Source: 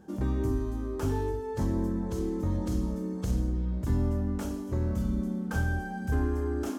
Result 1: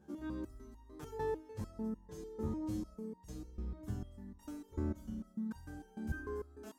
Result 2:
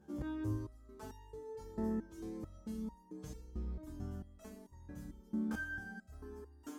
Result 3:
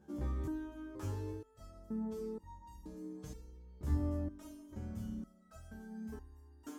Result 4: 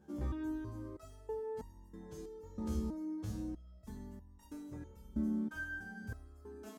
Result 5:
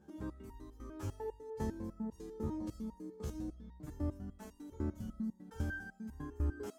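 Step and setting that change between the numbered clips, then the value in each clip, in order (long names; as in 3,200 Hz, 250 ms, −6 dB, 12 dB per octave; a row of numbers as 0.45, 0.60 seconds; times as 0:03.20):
step-sequenced resonator, speed: 6.7, 4.5, 2.1, 3.1, 10 Hertz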